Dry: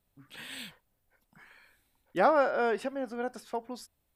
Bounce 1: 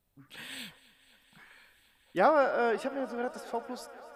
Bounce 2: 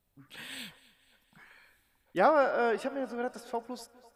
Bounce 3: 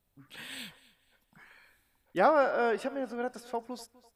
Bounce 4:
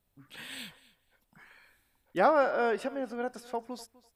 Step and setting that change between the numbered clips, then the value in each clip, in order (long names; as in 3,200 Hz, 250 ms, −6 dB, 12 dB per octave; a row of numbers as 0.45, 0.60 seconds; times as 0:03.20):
feedback echo with a high-pass in the loop, feedback: 86, 57, 33, 17%